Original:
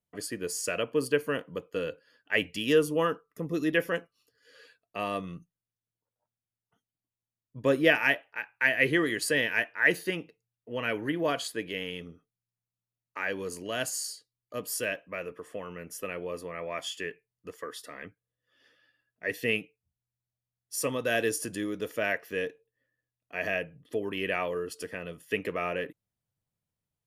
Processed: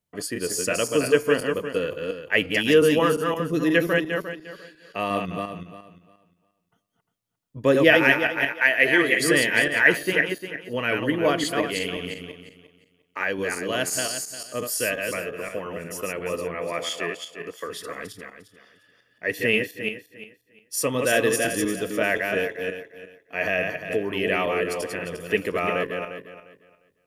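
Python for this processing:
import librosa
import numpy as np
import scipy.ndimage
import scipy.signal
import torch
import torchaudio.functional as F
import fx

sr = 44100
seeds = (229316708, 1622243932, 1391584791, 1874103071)

y = fx.reverse_delay_fb(x, sr, ms=176, feedback_pct=46, wet_db=-3.5)
y = fx.bass_treble(y, sr, bass_db=-12, treble_db=0, at=(8.52, 9.2))
y = fx.highpass(y, sr, hz=140.0, slope=12, at=(16.83, 17.65))
y = y * 10.0 ** (5.5 / 20.0)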